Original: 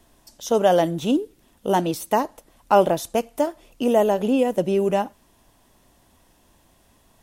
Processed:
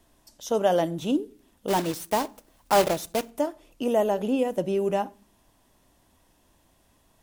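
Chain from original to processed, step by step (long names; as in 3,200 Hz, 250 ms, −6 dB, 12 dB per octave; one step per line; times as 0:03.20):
0:01.68–0:03.32: one scale factor per block 3 bits
on a send: convolution reverb RT60 0.40 s, pre-delay 3 ms, DRR 16 dB
on the sum: level −5 dB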